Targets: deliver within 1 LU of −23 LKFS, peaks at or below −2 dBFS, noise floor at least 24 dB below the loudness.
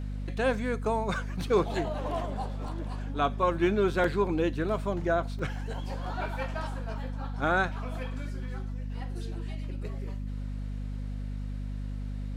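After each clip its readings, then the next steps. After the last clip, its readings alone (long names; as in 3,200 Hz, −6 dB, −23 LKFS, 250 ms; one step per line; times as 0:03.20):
number of dropouts 3; longest dropout 3.2 ms; mains hum 50 Hz; hum harmonics up to 250 Hz; level of the hum −32 dBFS; integrated loudness −31.5 LKFS; sample peak −13.5 dBFS; target loudness −23.0 LKFS
→ repair the gap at 0:02.68/0:04.04/0:05.39, 3.2 ms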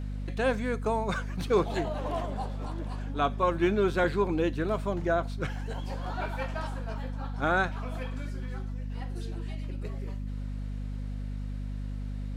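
number of dropouts 0; mains hum 50 Hz; hum harmonics up to 250 Hz; level of the hum −32 dBFS
→ hum removal 50 Hz, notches 5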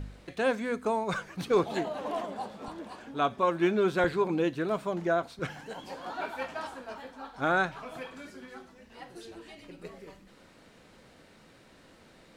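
mains hum none found; integrated loudness −31.0 LKFS; sample peak −14.5 dBFS; target loudness −23.0 LKFS
→ level +8 dB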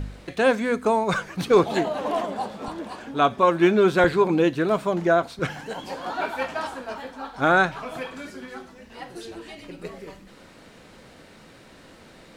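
integrated loudness −23.0 LKFS; sample peak −6.5 dBFS; background noise floor −49 dBFS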